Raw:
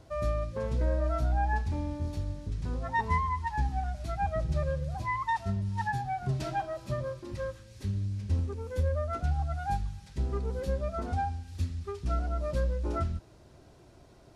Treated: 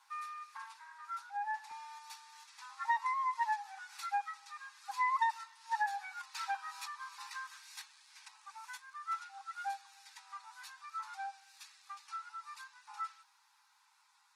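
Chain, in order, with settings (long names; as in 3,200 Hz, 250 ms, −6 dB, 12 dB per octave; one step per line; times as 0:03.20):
source passing by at 0:05.14, 5 m/s, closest 5.1 metres
notch filter 3,100 Hz, Q 12
downward compressor 16 to 1, threshold −43 dBFS, peak gain reduction 18.5 dB
linear-phase brick-wall high-pass 790 Hz
level +15 dB
Opus 20 kbit/s 48,000 Hz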